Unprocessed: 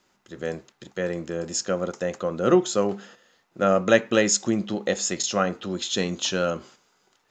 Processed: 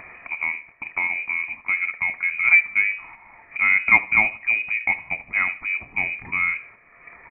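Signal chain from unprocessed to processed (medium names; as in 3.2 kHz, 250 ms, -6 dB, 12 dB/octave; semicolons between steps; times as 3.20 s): high-pass 220 Hz 24 dB/octave; peaking EQ 1.2 kHz -15 dB 0.27 oct; upward compressor, threshold -23 dBFS; distance through air 330 m; feedback delay 76 ms, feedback 36%, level -19 dB; frequency inversion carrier 2.7 kHz; trim +4 dB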